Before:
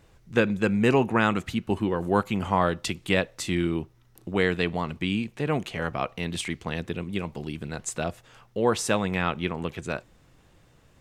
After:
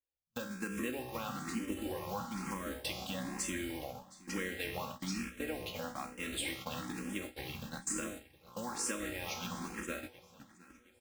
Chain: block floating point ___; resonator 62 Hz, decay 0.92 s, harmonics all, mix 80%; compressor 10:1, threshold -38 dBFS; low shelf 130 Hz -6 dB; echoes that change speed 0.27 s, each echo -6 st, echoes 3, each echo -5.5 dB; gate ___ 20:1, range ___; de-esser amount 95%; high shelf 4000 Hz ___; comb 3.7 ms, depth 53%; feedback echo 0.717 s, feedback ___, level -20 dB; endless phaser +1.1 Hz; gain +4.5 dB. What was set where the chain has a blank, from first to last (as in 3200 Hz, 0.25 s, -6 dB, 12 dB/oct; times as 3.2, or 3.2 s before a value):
5-bit, -45 dBFS, -36 dB, +8 dB, 41%